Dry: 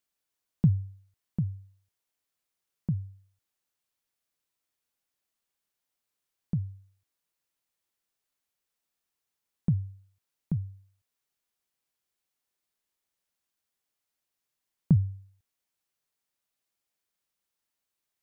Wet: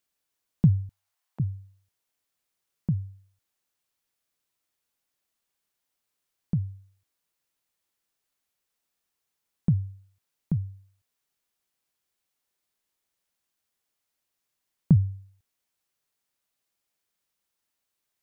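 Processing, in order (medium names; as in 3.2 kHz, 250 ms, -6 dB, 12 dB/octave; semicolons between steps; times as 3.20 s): 0.89–1.40 s: resonant high-pass 790 Hz, resonance Q 1.6; trim +3 dB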